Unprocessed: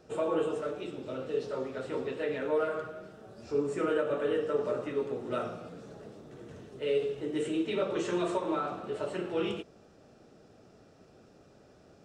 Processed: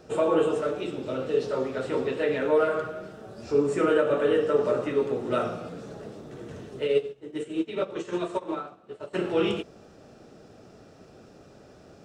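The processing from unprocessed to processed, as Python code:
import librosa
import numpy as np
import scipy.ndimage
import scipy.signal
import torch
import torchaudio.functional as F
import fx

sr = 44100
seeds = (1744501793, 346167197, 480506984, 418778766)

y = fx.upward_expand(x, sr, threshold_db=-40.0, expansion=2.5, at=(6.86, 9.13), fade=0.02)
y = F.gain(torch.from_numpy(y), 7.0).numpy()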